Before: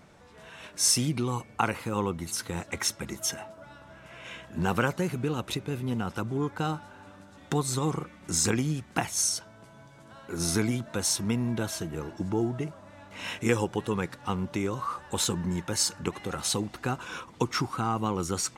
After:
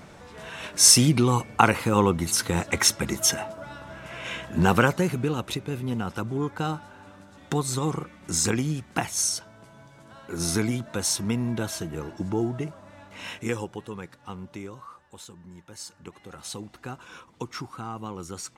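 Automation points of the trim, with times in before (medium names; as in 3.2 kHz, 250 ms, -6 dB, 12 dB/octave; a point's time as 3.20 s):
4.50 s +8.5 dB
5.54 s +1.5 dB
13.00 s +1.5 dB
13.93 s -8 dB
14.60 s -8 dB
15.29 s -18 dB
16.68 s -7 dB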